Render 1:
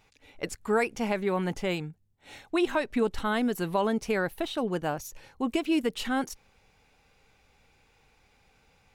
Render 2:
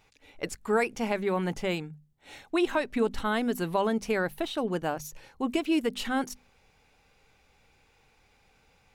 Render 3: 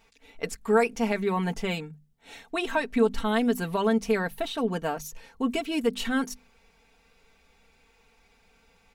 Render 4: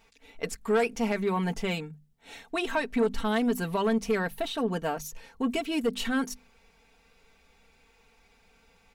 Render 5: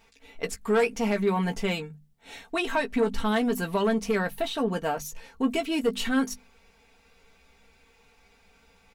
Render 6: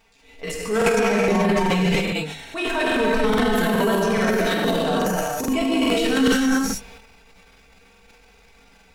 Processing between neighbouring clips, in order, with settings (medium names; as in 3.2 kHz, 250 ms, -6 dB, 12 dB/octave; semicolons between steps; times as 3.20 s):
hum notches 50/100/150/200/250 Hz
comb 4.4 ms, depth 72%
saturation -18 dBFS, distortion -15 dB
doubling 15 ms -8.5 dB; trim +1.5 dB
gated-style reverb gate 470 ms flat, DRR -5.5 dB; transient shaper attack -5 dB, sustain +10 dB; crackling interface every 0.42 s, samples 2048, repeat, from 0.77 s